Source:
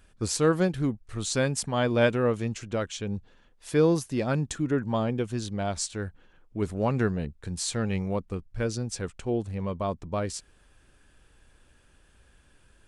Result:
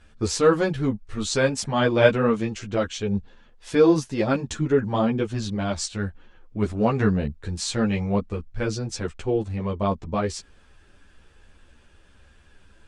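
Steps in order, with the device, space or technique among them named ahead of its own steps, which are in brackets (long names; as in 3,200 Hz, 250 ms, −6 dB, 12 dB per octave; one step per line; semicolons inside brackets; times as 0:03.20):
string-machine ensemble chorus (string-ensemble chorus; low-pass filter 6,500 Hz 12 dB per octave)
level +8 dB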